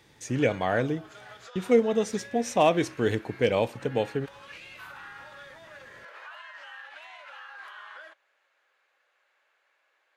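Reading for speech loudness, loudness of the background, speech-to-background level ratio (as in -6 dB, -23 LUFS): -26.5 LUFS, -45.5 LUFS, 19.0 dB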